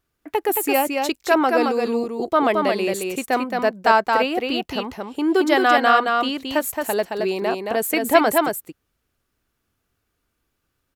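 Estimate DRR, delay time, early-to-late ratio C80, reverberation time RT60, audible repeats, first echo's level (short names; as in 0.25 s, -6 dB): none, 0.221 s, none, none, 1, -4.0 dB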